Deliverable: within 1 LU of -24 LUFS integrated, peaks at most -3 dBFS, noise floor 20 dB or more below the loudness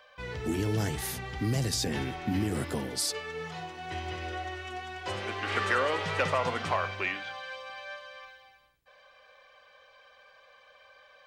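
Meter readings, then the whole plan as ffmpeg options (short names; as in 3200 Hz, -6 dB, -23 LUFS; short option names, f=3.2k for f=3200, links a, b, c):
loudness -32.0 LUFS; peak -15.5 dBFS; loudness target -24.0 LUFS
-> -af "volume=8dB"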